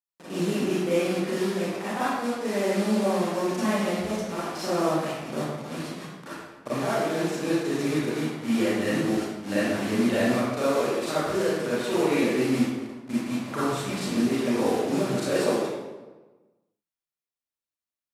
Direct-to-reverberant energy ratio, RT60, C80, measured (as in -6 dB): -10.5 dB, 1.2 s, 0.0 dB